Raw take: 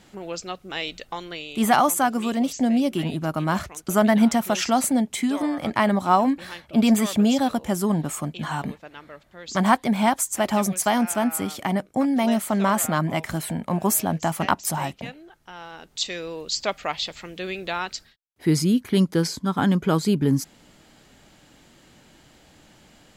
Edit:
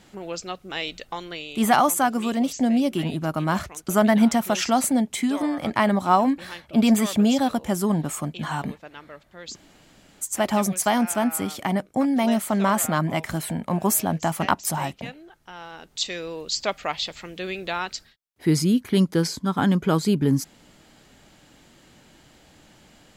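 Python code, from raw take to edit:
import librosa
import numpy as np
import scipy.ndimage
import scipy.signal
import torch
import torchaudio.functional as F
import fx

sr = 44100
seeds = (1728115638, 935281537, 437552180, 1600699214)

y = fx.edit(x, sr, fx.room_tone_fill(start_s=9.54, length_s=0.69, crossfade_s=0.04), tone=tone)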